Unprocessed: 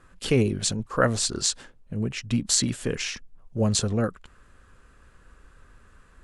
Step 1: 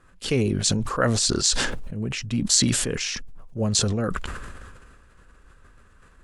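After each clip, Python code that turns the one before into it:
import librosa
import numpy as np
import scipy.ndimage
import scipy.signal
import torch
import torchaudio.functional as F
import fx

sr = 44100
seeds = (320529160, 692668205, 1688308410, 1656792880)

y = fx.dynamic_eq(x, sr, hz=5400.0, q=0.85, threshold_db=-39.0, ratio=4.0, max_db=6)
y = fx.sustainer(y, sr, db_per_s=29.0)
y = y * librosa.db_to_amplitude(-2.0)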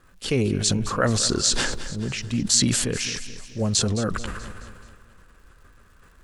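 y = fx.dmg_crackle(x, sr, seeds[0], per_s=230.0, level_db=-51.0)
y = fx.echo_feedback(y, sr, ms=215, feedback_pct=49, wet_db=-14)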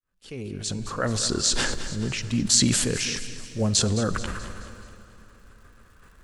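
y = fx.fade_in_head(x, sr, length_s=1.82)
y = fx.rev_plate(y, sr, seeds[1], rt60_s=3.6, hf_ratio=0.8, predelay_ms=0, drr_db=15.0)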